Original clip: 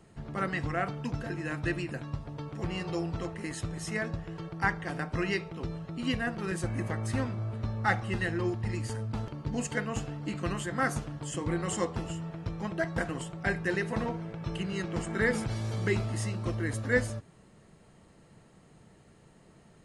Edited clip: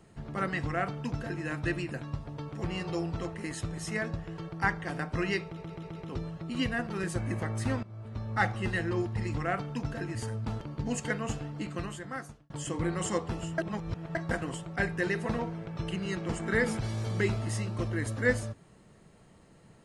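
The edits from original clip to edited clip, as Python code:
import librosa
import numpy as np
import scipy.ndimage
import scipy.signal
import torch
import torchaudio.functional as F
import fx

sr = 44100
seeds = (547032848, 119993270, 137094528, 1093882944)

y = fx.edit(x, sr, fx.duplicate(start_s=0.63, length_s=0.81, to_s=8.82),
    fx.stutter(start_s=5.44, slice_s=0.13, count=5),
    fx.fade_in_from(start_s=7.31, length_s=0.61, floor_db=-16.5),
    fx.fade_out_span(start_s=10.12, length_s=1.05),
    fx.reverse_span(start_s=12.25, length_s=0.57), tone=tone)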